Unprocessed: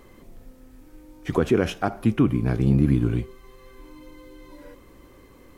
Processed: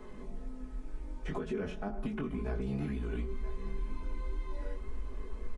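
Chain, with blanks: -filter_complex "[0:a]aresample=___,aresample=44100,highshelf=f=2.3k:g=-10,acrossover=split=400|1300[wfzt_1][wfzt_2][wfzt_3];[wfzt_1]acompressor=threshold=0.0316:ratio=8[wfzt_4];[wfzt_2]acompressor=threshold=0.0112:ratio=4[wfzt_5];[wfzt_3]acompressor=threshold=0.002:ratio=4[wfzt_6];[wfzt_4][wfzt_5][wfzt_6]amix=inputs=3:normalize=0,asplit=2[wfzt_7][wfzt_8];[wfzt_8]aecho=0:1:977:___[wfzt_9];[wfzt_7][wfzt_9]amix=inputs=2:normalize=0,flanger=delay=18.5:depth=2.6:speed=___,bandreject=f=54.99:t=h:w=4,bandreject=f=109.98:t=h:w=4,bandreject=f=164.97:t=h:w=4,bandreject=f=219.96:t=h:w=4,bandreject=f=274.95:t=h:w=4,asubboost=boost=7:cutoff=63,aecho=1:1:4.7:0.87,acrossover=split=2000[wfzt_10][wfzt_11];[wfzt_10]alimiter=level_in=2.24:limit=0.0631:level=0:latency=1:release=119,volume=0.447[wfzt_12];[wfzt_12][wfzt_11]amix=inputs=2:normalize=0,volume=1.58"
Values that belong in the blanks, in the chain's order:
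22050, 0.141, 2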